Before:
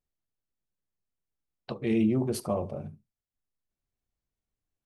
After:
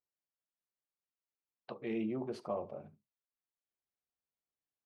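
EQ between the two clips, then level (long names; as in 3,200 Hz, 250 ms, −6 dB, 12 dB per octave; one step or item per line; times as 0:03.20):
high-pass filter 730 Hz 6 dB per octave
low-pass filter 4,700 Hz 12 dB per octave
high-shelf EQ 2,400 Hz −11.5 dB
−2.0 dB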